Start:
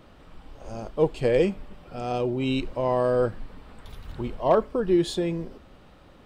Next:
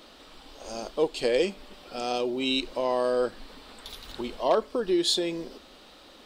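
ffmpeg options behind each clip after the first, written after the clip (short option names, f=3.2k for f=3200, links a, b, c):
-filter_complex "[0:a]equalizer=f=125:t=o:w=1:g=-10,equalizer=f=250:t=o:w=1:g=5,equalizer=f=4k:t=o:w=1:g=9,asplit=2[a][b];[b]acompressor=threshold=-28dB:ratio=6,volume=1.5dB[c];[a][c]amix=inputs=2:normalize=0,bass=f=250:g=-10,treble=f=4k:g=8,volume=-5.5dB"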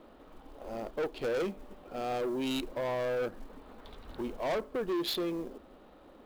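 -af "adynamicsmooth=sensitivity=2:basefreq=1.2k,acrusher=bits=6:mode=log:mix=0:aa=0.000001,asoftclip=type=tanh:threshold=-28.5dB"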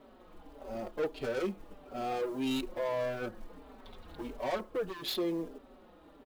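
-filter_complex "[0:a]asplit=2[a][b];[b]adelay=4.7,afreqshift=-1.6[c];[a][c]amix=inputs=2:normalize=1,volume=1.5dB"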